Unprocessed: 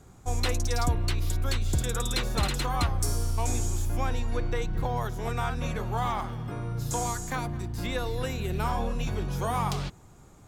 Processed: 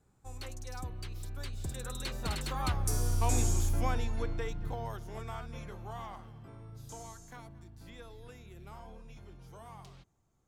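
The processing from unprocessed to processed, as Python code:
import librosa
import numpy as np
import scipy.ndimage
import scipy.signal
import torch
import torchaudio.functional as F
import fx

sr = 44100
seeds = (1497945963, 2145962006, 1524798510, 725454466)

y = fx.doppler_pass(x, sr, speed_mps=18, closest_m=8.9, pass_at_s=3.45)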